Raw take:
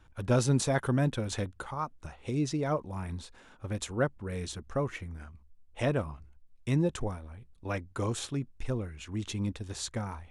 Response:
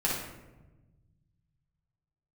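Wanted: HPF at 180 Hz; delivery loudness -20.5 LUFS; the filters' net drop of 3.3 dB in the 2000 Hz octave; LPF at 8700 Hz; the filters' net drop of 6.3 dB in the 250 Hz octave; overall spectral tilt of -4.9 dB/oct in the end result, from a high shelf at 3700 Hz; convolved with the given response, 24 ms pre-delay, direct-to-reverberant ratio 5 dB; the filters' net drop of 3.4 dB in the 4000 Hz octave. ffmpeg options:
-filter_complex "[0:a]highpass=180,lowpass=8.7k,equalizer=f=250:t=o:g=-6.5,equalizer=f=2k:t=o:g=-4.5,highshelf=f=3.7k:g=6,equalizer=f=4k:t=o:g=-7,asplit=2[a][b];[1:a]atrim=start_sample=2205,adelay=24[c];[b][c]afir=irnorm=-1:irlink=0,volume=-14dB[d];[a][d]amix=inputs=2:normalize=0,volume=15dB"

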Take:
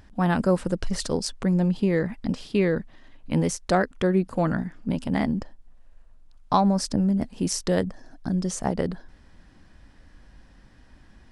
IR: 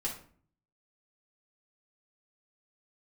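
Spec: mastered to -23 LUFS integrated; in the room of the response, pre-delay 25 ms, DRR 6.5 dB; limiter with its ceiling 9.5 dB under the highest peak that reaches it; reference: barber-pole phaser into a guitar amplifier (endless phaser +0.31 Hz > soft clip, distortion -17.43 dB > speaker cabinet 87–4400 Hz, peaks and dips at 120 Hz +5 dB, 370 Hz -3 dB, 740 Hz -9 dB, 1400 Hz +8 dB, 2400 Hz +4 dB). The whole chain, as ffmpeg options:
-filter_complex "[0:a]alimiter=limit=-17dB:level=0:latency=1,asplit=2[a][b];[1:a]atrim=start_sample=2205,adelay=25[c];[b][c]afir=irnorm=-1:irlink=0,volume=-9dB[d];[a][d]amix=inputs=2:normalize=0,asplit=2[e][f];[f]afreqshift=0.31[g];[e][g]amix=inputs=2:normalize=1,asoftclip=threshold=-20dB,highpass=87,equalizer=f=120:t=q:w=4:g=5,equalizer=f=370:t=q:w=4:g=-3,equalizer=f=740:t=q:w=4:g=-9,equalizer=f=1.4k:t=q:w=4:g=8,equalizer=f=2.4k:t=q:w=4:g=4,lowpass=f=4.4k:w=0.5412,lowpass=f=4.4k:w=1.3066,volume=9.5dB"

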